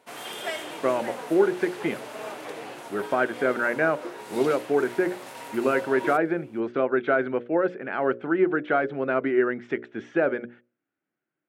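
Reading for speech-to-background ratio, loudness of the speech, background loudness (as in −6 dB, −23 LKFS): 12.0 dB, −25.5 LKFS, −37.5 LKFS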